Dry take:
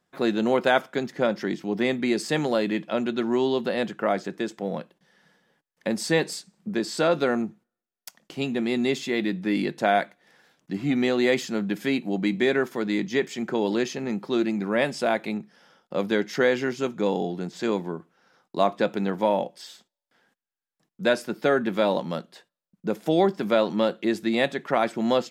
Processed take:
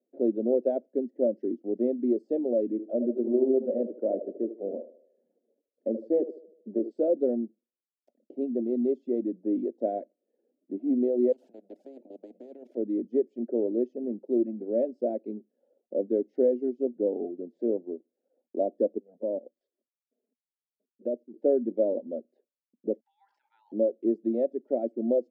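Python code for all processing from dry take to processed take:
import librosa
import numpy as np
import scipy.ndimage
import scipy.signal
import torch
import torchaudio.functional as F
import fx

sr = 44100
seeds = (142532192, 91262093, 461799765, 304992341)

y = fx.chain(x, sr, fx.lowpass(hz=2200.0, slope=6),
    fx.echo_banded(ms=76, feedback_pct=54, hz=520.0, wet_db=-5),
    fx.doppler_dist(depth_ms=0.13), at=(2.71, 6.91))
y = fx.chain(y, sr, fx.level_steps(step_db=13),
    fx.spectral_comp(ratio=10.0), at=(11.32, 12.77))
y = fx.chain(y, sr, fx.high_shelf(hz=6000.0, db=-12.0),
    fx.level_steps(step_db=12),
    fx.env_flanger(rest_ms=4.8, full_db=-25.0), at=(18.98, 21.34))
y = fx.chain(y, sr, fx.brickwall_highpass(low_hz=810.0),
    fx.high_shelf(hz=3200.0, db=-8.5),
    fx.sustainer(db_per_s=32.0), at=(23.0, 23.72))
y = fx.dereverb_blind(y, sr, rt60_s=0.6)
y = scipy.signal.sosfilt(scipy.signal.ellip(3, 1.0, 40, [240.0, 600.0], 'bandpass', fs=sr, output='sos'), y)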